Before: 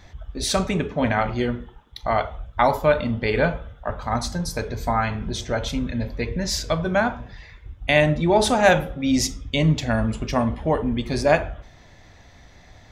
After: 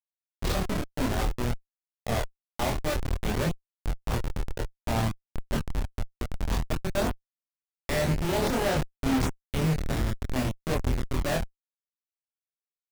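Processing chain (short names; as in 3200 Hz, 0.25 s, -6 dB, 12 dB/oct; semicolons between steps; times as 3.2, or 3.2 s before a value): Schmitt trigger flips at -18.5 dBFS; chorus voices 2, 0.28 Hz, delay 25 ms, depth 1.6 ms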